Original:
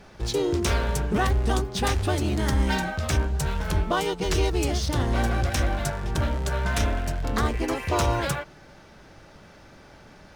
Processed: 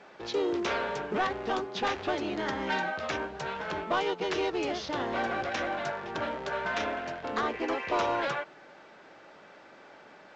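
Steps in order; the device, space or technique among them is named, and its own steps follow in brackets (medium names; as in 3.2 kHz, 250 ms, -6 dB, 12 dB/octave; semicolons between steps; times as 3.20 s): telephone (band-pass 360–3200 Hz; saturation -20.5 dBFS, distortion -17 dB; A-law 128 kbps 16 kHz)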